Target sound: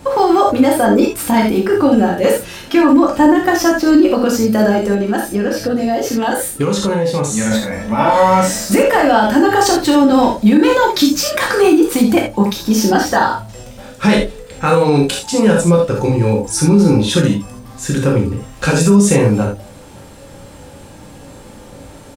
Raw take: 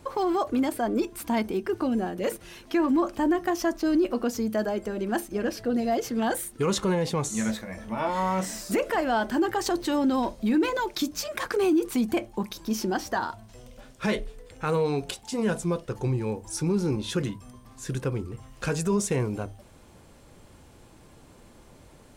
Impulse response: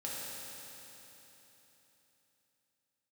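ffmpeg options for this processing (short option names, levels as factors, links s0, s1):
-filter_complex "[1:a]atrim=start_sample=2205,atrim=end_sample=3969[s0];[0:a][s0]afir=irnorm=-1:irlink=0,asettb=1/sr,asplit=3[s1][s2][s3];[s1]atrim=end=4.944[s4];[s2]atrim=start=4.94:end=7.51,asetpts=PTS-STARTPTS,afade=t=in:d=0.004:c=qsin,afade=t=out:st=2.566:d=0.004:c=qsin,acompressor=threshold=0.0316:ratio=6[s5];[s3]atrim=start=7.506[s6];[s4][s5]acrossfade=d=0.004:c1=hsin:c2=qsin[s7];[s7][s6]acrossfade=d=0.004:c1=qsin:c2=hsin,asplit=2[s8][s9];[s9]adelay=99.13,volume=0.0398,highshelf=f=4000:g=-2.23[s10];[s8][s10]amix=inputs=2:normalize=0,alimiter=level_in=7.94:limit=0.891:release=50:level=0:latency=1,volume=0.891"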